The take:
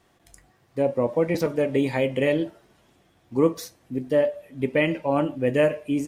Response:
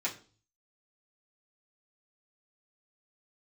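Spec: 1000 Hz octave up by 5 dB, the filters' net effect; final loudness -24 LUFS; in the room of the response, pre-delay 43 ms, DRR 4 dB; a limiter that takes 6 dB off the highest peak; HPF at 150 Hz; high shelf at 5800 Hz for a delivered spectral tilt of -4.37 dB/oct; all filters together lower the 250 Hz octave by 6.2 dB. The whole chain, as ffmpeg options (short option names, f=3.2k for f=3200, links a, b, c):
-filter_complex "[0:a]highpass=150,equalizer=f=250:t=o:g=-8,equalizer=f=1k:t=o:g=7,highshelf=f=5.8k:g=-4,alimiter=limit=-13.5dB:level=0:latency=1,asplit=2[a][b];[1:a]atrim=start_sample=2205,adelay=43[c];[b][c]afir=irnorm=-1:irlink=0,volume=-9dB[d];[a][d]amix=inputs=2:normalize=0,volume=1dB"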